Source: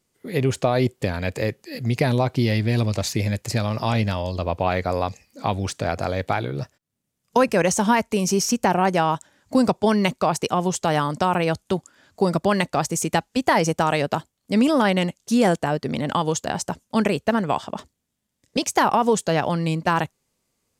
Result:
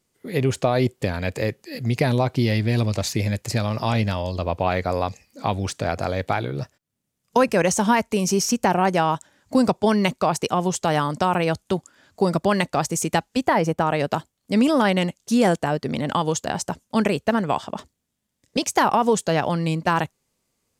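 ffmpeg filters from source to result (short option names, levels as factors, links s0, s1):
-filter_complex "[0:a]asplit=3[s0][s1][s2];[s0]afade=t=out:st=13.46:d=0.02[s3];[s1]equalizer=f=7100:w=0.46:g=-11,afade=t=in:st=13.46:d=0.02,afade=t=out:st=13.99:d=0.02[s4];[s2]afade=t=in:st=13.99:d=0.02[s5];[s3][s4][s5]amix=inputs=3:normalize=0"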